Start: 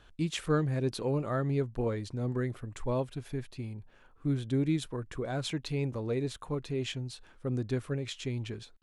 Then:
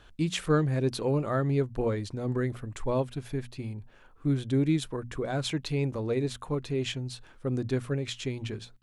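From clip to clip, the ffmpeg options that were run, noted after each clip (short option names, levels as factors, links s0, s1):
-af "bandreject=f=60:t=h:w=6,bandreject=f=120:t=h:w=6,bandreject=f=180:t=h:w=6,bandreject=f=240:t=h:w=6,volume=1.5"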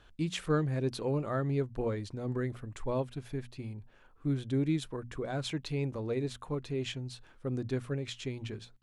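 -af "highshelf=f=8700:g=-4,volume=0.596"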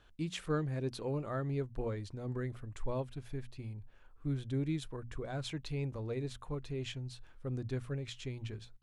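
-af "asubboost=boost=2.5:cutoff=120,volume=0.596"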